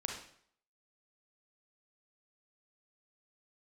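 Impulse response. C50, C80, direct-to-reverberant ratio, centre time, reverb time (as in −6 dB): 3.0 dB, 8.0 dB, 0.5 dB, 36 ms, 0.60 s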